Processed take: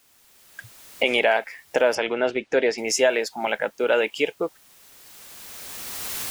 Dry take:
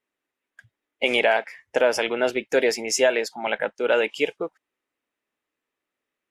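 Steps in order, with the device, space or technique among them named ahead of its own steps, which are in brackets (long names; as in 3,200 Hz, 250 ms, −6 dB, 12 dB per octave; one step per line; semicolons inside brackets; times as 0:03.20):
cheap recorder with automatic gain (white noise bed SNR 35 dB; camcorder AGC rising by 16 dB per second)
0:01.95–0:02.78: high-frequency loss of the air 120 metres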